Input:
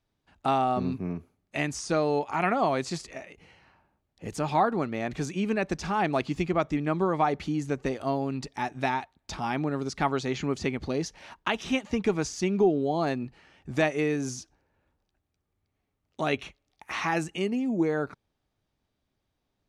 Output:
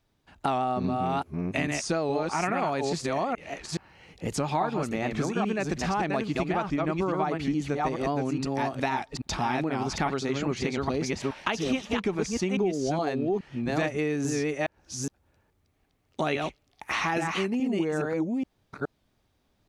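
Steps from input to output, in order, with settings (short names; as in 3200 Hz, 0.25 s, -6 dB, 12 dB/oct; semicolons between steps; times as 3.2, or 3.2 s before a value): reverse delay 0.419 s, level -3 dB; compressor 4:1, threshold -32 dBFS, peak gain reduction 13.5 dB; record warp 78 rpm, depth 100 cents; gain +6.5 dB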